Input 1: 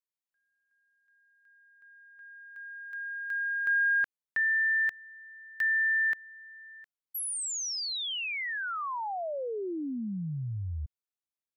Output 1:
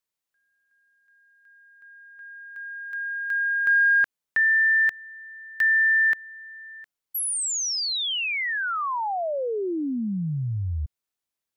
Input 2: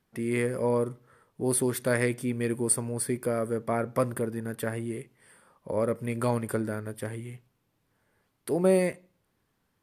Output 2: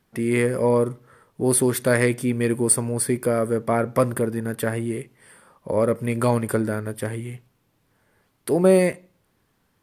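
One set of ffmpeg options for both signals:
ffmpeg -i in.wav -af "acontrast=83" out.wav

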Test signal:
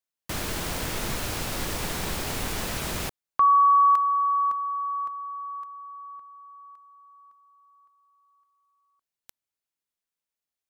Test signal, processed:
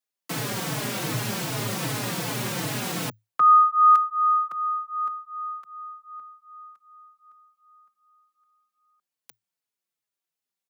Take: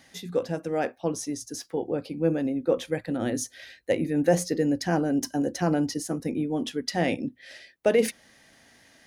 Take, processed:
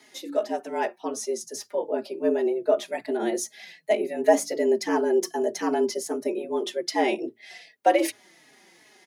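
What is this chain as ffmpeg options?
ffmpeg -i in.wav -filter_complex "[0:a]afreqshift=110,asplit=2[link_01][link_02];[link_02]adelay=4.2,afreqshift=-2.6[link_03];[link_01][link_03]amix=inputs=2:normalize=1,volume=4dB" out.wav

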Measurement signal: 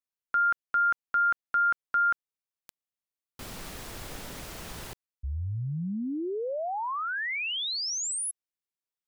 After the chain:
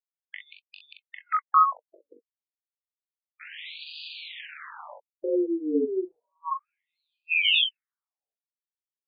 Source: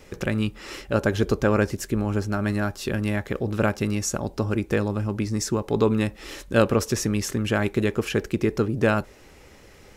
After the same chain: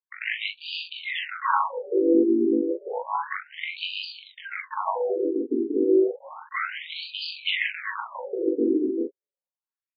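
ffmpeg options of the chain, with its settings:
ffmpeg -i in.wav -filter_complex "[0:a]afftfilt=real='real(if(between(b,1,1008),(2*floor((b-1)/24)+1)*24-b,b),0)':imag='imag(if(between(b,1,1008),(2*floor((b-1)/24)+1)*24-b,b),0)*if(between(b,1,1008),-1,1)':win_size=2048:overlap=0.75,agate=range=-57dB:threshold=-42dB:ratio=16:release=30:detection=rms,tiltshelf=frequency=660:gain=-6,acrossover=split=520|3800[link_01][link_02][link_03];[link_01]acontrast=54[link_04];[link_04][link_02][link_03]amix=inputs=3:normalize=0,alimiter=limit=-14dB:level=0:latency=1:release=24,acontrast=31,flanger=delay=18.5:depth=3.6:speed=0.37,aeval=exprs='val(0)*sin(2*PI*80*n/s)':channel_layout=same,aecho=1:1:30|42:0.133|0.668,afftfilt=real='re*between(b*sr/1024,320*pow(3500/320,0.5+0.5*sin(2*PI*0.31*pts/sr))/1.41,320*pow(3500/320,0.5+0.5*sin(2*PI*0.31*pts/sr))*1.41)':imag='im*between(b*sr/1024,320*pow(3500/320,0.5+0.5*sin(2*PI*0.31*pts/sr))/1.41,320*pow(3500/320,0.5+0.5*sin(2*PI*0.31*pts/sr))*1.41)':win_size=1024:overlap=0.75,volume=4.5dB" out.wav

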